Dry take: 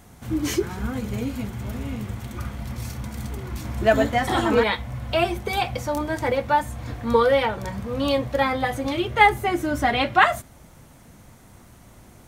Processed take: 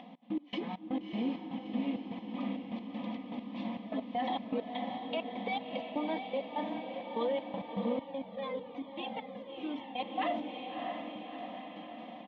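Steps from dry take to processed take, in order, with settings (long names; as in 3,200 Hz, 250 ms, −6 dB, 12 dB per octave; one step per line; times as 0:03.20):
elliptic low-pass filter 3,400 Hz, stop band 70 dB
phaser with its sweep stopped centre 390 Hz, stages 6
comb filter 4 ms, depth 40%
brickwall limiter −26 dBFS, peak gain reduction 18.5 dB
Butterworth high-pass 180 Hz
gate pattern "xx..x..x" 199 BPM −24 dB
upward compression, threshold −46 dBFS
feedback delay with all-pass diffusion 647 ms, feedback 62%, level −5.5 dB
0:07.99–0:10.00: flanger whose copies keep moving one way falling 1.1 Hz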